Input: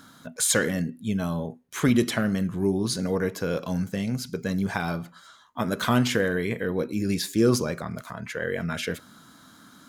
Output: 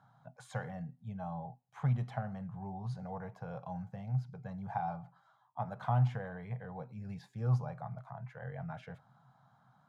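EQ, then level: double band-pass 320 Hz, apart 2.6 oct; +1.0 dB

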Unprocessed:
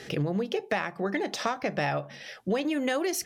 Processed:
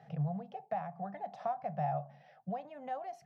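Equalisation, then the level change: double band-pass 340 Hz, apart 2.2 oct; +1.0 dB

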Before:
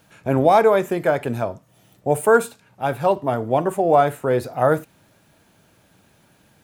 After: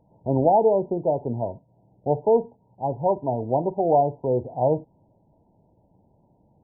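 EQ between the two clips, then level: brick-wall FIR low-pass 1000 Hz; low shelf 63 Hz +7 dB; -3.5 dB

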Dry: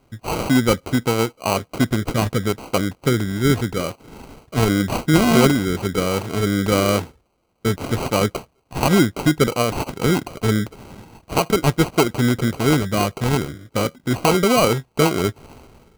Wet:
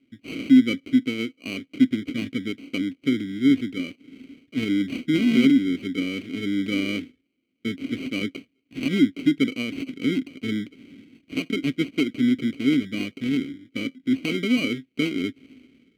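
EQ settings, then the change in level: vowel filter i; high shelf 11000 Hz +11.5 dB; +5.5 dB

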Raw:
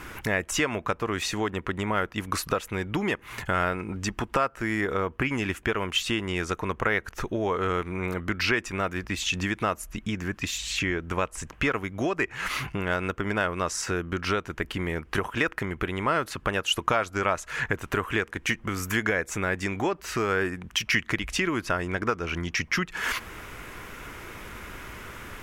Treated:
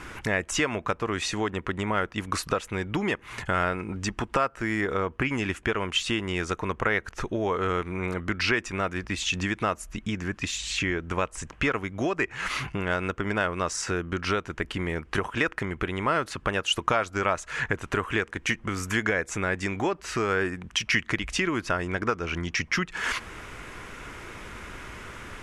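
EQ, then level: LPF 10000 Hz 24 dB/oct; 0.0 dB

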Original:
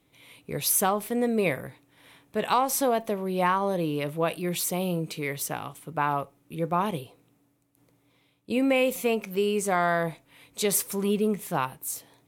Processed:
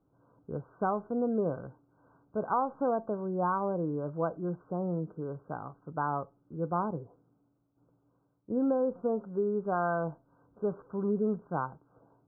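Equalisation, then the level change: brick-wall FIR low-pass 1600 Hz; air absorption 440 m; -3.5 dB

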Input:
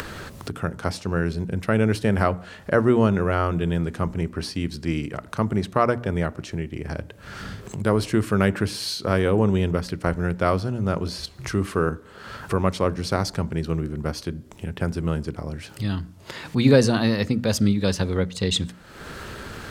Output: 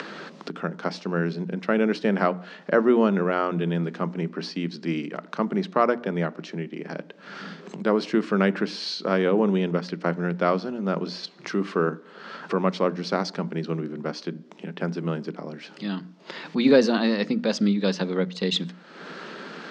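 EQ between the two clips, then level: elliptic high-pass 170 Hz, stop band 40 dB; LPF 5400 Hz 24 dB/oct; 0.0 dB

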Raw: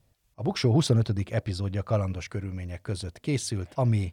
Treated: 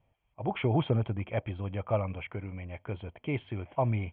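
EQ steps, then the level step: rippled Chebyshev low-pass 3300 Hz, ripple 9 dB; +3.0 dB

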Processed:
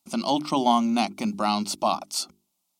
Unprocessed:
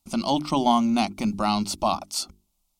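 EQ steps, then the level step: HPF 190 Hz 12 dB/oct; 0.0 dB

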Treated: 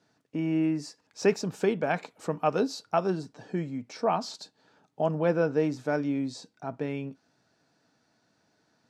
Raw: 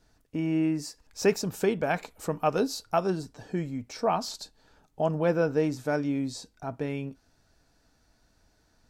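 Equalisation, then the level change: HPF 130 Hz 24 dB/oct; air absorption 63 m; 0.0 dB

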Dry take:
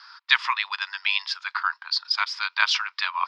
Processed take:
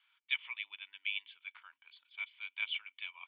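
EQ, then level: vocal tract filter i; bell 1100 Hz -3.5 dB 0.66 oct; +2.5 dB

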